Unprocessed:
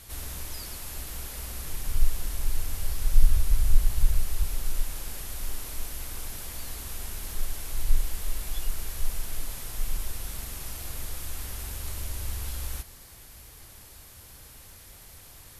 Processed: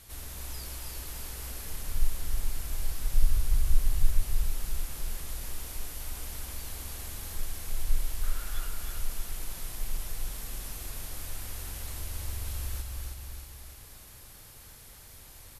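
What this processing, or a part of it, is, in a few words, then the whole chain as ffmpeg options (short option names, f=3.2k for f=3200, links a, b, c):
ducked delay: -filter_complex "[0:a]asettb=1/sr,asplit=3[a][b][c];[a]atrim=end=8.234[d];[b]atrim=start=8.23:end=8.67,asetpts=PTS-STARTPTS,afade=t=in:d=0.004:c=qsin,afade=t=out:st=0.436:d=0.004:c=qsin,equalizer=f=1.4k:w=3.8:g=15[e];[c]atrim=start=8.666[f];[d][e]acrossfade=d=0.004:c1=hsin:c2=qsin[g];[g][f]acrossfade=d=0.004:c1=qsin:c2=hsin,aecho=1:1:316|632|948|1264|1580|1896:0.596|0.286|0.137|0.0659|0.0316|0.0152,asplit=3[h][i][j];[i]adelay=269,volume=-5dB[k];[j]apad=whole_len=716961[l];[k][l]sidechaincompress=threshold=-31dB:ratio=8:attack=16:release=698[m];[h][m]amix=inputs=2:normalize=0,volume=-4.5dB"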